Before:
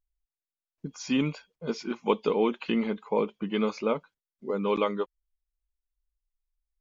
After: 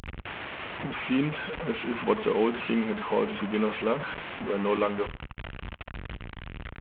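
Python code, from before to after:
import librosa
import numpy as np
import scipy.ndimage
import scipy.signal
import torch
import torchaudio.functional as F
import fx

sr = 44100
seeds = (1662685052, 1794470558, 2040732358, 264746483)

p1 = fx.delta_mod(x, sr, bps=16000, step_db=-27.5)
p2 = scipy.signal.sosfilt(scipy.signal.butter(2, 49.0, 'highpass', fs=sr, output='sos'), p1)
y = p2 + fx.echo_feedback(p2, sr, ms=71, feedback_pct=32, wet_db=-22, dry=0)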